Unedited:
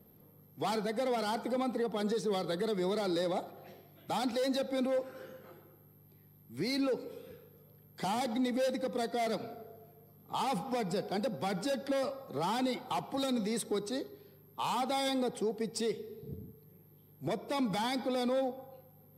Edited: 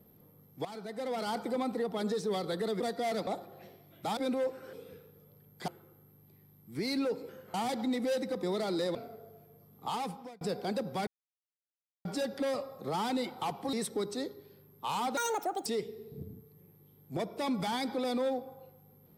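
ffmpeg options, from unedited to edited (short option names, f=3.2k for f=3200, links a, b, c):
-filter_complex "[0:a]asplit=16[a][b][c][d][e][f][g][h][i][j][k][l][m][n][o][p];[a]atrim=end=0.65,asetpts=PTS-STARTPTS,afade=t=out:st=0.646:d=0.004:c=hsin:silence=0.177828[q];[b]atrim=start=0.65:end=2.802,asetpts=PTS-STARTPTS,afade=t=in:d=0.71:silence=0.177828[r];[c]atrim=start=8.948:end=9.422[s];[d]atrim=start=3.318:end=4.222[t];[e]atrim=start=4.688:end=5.252[u];[f]atrim=start=7.108:end=8.062[v];[g]atrim=start=5.498:end=7.112[w];[h]atrim=start=5.248:end=5.502[x];[i]atrim=start=8.058:end=8.952[y];[j]atrim=start=2.798:end=3.322[z];[k]atrim=start=9.418:end=10.88,asetpts=PTS-STARTPTS,afade=t=out:st=0.912:d=0.55[aa];[l]atrim=start=10.88:end=11.54,asetpts=PTS-STARTPTS,afade=t=in:d=0.004:c=hsin,afade=t=out:st=0.656:d=0.004:c=hsin,apad=pad_dur=0.98[ab];[m]atrim=start=11.54:end=13.222,asetpts=PTS-STARTPTS,afade=t=in:d=0.004:c=hsin[ac];[n]atrim=start=13.478:end=14.924[ad];[o]atrim=start=14.92:end=15.77,asetpts=PTS-STARTPTS,asetrate=76734,aresample=44100,atrim=end_sample=21543,asetpts=PTS-STARTPTS[ae];[p]atrim=start=15.766[af];[q][r]concat=n=2:v=0:a=1[ag];[ag][s]acrossfade=d=0.004:c1=hsin:c2=hsin[ah];[ah][t]acrossfade=d=0.004:c1=hsin:c2=hsin[ai];[ai][u]acrossfade=d=0.004:c1=hsin:c2=hsin[aj];[aj][v]acrossfade=d=0.004:c1=hsin:c2=hsin[ak];[ak][w]acrossfade=d=0.004:c1=hsin:c2=hsin[al];[al][x]acrossfade=d=0.004:c1=hsin:c2=hsin[am];[am][y]acrossfade=d=0.004:c1=hsin:c2=hsin[an];[an][z]acrossfade=d=0.004:c1=hsin:c2=hsin[ao];[aa][ab][ac]concat=n=3:v=0:a=1[ap];[ao][ap]acrossfade=d=0.004:c1=hsin:c2=hsin[aq];[aq][ad]acrossfade=d=0.004:c1=hsin:c2=hsin[ar];[ar][ae]acrossfade=d=0.004:c1=hsin:c2=hsin[as];[as][af]acrossfade=d=0.004:c1=hsin:c2=hsin"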